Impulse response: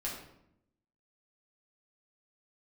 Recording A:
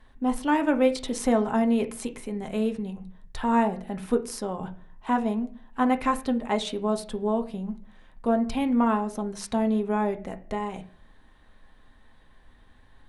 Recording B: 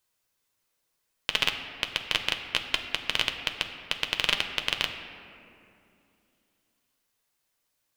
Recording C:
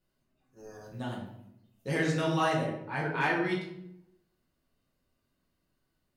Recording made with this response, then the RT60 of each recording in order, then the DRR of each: C; 0.45 s, 2.7 s, 0.75 s; 5.0 dB, 4.5 dB, -5.5 dB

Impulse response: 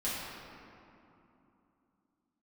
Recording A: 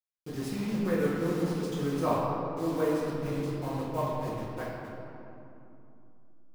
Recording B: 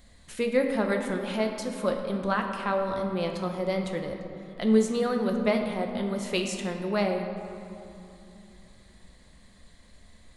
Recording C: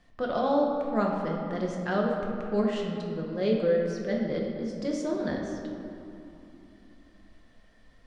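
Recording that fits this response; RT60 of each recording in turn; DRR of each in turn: A; 2.9 s, 3.0 s, 3.0 s; -10.0 dB, 3.0 dB, -1.5 dB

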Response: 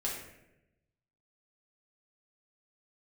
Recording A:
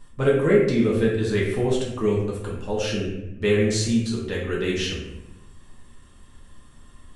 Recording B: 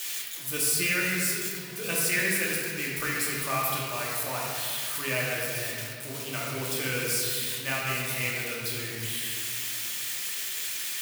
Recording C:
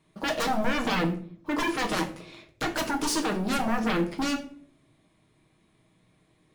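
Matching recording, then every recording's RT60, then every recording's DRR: A; 0.90 s, 2.3 s, 0.50 s; -5.0 dB, -4.5 dB, 2.5 dB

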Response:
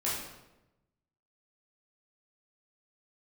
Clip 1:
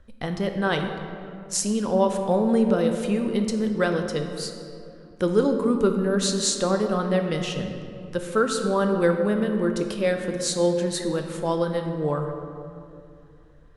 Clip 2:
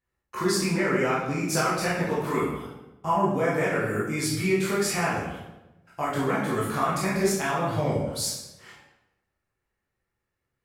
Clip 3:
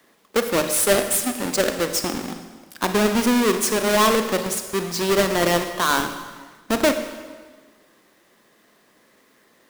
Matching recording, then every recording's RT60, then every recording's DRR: 2; 2.7 s, 1.0 s, 1.4 s; 5.0 dB, -8.0 dB, 7.5 dB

